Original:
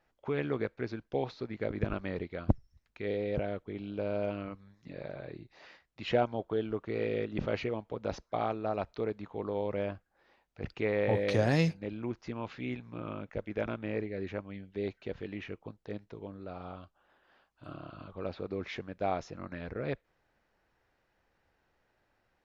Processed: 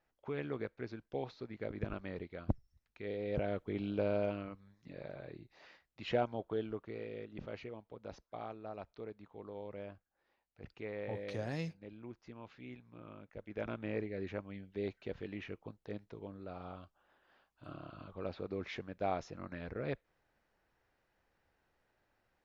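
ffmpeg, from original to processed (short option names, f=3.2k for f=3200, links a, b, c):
-af "volume=11.5dB,afade=t=in:st=3.17:d=0.66:silence=0.334965,afade=t=out:st=3.83:d=0.65:silence=0.421697,afade=t=out:st=6.61:d=0.44:silence=0.421697,afade=t=in:st=13.35:d=0.46:silence=0.354813"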